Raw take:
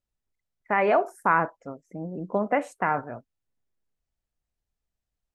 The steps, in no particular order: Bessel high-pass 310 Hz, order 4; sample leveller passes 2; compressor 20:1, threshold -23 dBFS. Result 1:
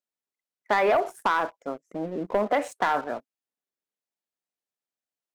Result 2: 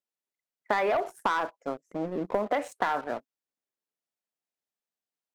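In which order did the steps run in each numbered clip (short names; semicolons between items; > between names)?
Bessel high-pass > compressor > sample leveller; Bessel high-pass > sample leveller > compressor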